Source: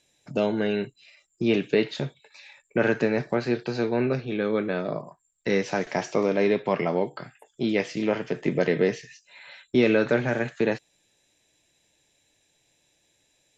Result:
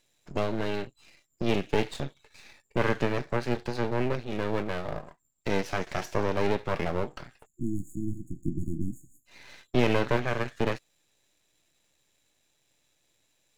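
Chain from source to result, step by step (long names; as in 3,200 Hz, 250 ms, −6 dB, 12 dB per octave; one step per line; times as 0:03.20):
half-wave rectification
time-frequency box erased 0:07.46–0:09.26, 350–6,600 Hz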